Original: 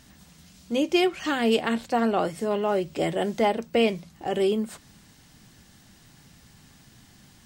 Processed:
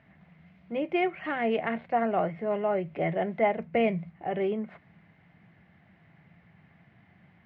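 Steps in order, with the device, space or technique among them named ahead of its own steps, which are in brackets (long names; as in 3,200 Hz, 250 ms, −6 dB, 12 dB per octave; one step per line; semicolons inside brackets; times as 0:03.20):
bass cabinet (loudspeaker in its box 88–2,400 Hz, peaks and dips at 92 Hz +4 dB, 170 Hz +8 dB, 260 Hz −5 dB, 670 Hz +8 dB, 2,100 Hz +9 dB)
0:03.59–0:04.10: bass and treble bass +6 dB, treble +3 dB
level −6 dB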